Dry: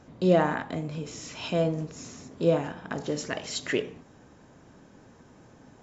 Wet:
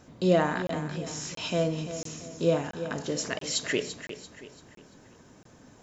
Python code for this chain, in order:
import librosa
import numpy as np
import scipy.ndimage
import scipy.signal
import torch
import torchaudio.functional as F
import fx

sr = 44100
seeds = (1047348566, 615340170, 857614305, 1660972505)

y = fx.high_shelf(x, sr, hz=3700.0, db=8.5)
y = fx.notch(y, sr, hz=820.0, q=25.0)
y = fx.echo_feedback(y, sr, ms=340, feedback_pct=39, wet_db=-11)
y = fx.buffer_crackle(y, sr, first_s=0.67, period_s=0.68, block=1024, kind='zero')
y = y * librosa.db_to_amplitude(-1.5)